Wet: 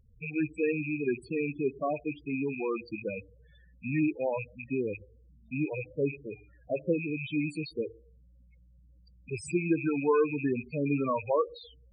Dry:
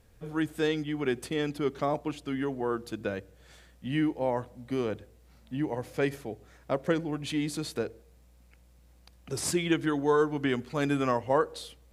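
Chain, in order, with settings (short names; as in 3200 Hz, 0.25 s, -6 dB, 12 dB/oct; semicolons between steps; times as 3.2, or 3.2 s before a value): rattling part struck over -41 dBFS, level -20 dBFS; 6.25–7 de-hum 151.2 Hz, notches 16; loudest bins only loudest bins 8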